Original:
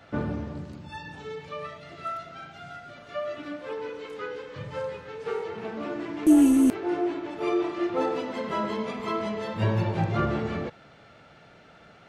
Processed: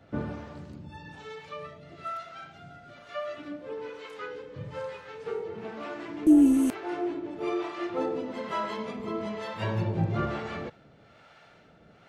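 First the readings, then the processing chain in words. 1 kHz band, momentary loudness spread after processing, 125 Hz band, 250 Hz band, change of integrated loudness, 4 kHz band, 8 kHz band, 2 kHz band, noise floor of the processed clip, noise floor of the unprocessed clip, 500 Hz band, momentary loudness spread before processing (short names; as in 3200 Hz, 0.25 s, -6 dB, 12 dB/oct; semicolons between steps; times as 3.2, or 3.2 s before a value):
-3.5 dB, 18 LU, -3.0 dB, -2.0 dB, -2.0 dB, -3.0 dB, -5.5 dB, -3.0 dB, -57 dBFS, -53 dBFS, -3.5 dB, 17 LU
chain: harmonic tremolo 1.1 Hz, depth 70%, crossover 560 Hz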